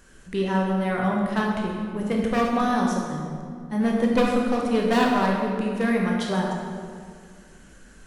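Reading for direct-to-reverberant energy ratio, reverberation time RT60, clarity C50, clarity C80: -2.0 dB, 2.1 s, 0.5 dB, 2.5 dB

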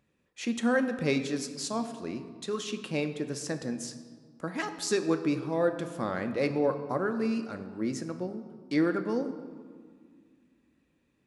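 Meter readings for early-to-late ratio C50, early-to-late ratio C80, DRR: 10.5 dB, 12.0 dB, 7.5 dB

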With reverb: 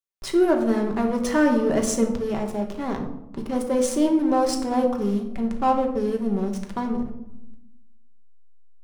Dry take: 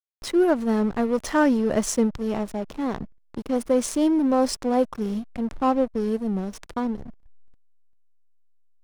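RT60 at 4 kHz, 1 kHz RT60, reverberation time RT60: 0.45 s, 0.80 s, 0.85 s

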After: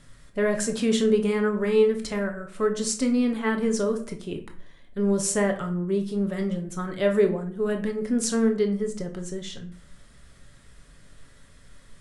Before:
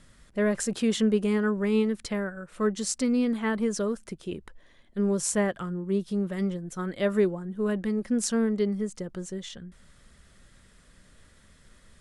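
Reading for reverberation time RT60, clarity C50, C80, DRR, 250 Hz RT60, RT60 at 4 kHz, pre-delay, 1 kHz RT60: 0.55 s, 10.5 dB, 15.5 dB, 4.0 dB, 0.65 s, 0.35 s, 7 ms, 0.50 s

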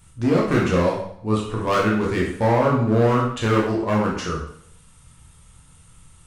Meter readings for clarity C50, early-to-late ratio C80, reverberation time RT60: 4.0 dB, 7.5 dB, 0.65 s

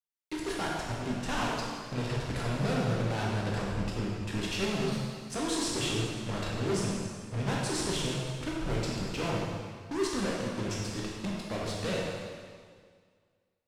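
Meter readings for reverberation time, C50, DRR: 1.9 s, -1.0 dB, -4.5 dB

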